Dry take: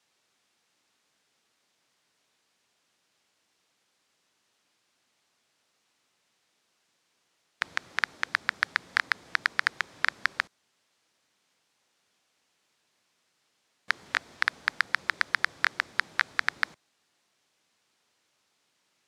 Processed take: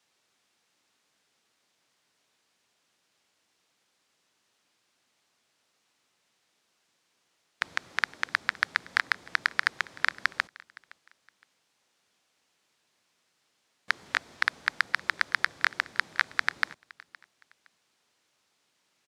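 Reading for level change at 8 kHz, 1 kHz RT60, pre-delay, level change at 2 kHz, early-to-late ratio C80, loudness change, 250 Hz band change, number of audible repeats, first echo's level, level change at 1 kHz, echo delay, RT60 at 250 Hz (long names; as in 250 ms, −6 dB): 0.0 dB, no reverb audible, no reverb audible, 0.0 dB, no reverb audible, 0.0 dB, 0.0 dB, 2, −23.0 dB, 0.0 dB, 515 ms, no reverb audible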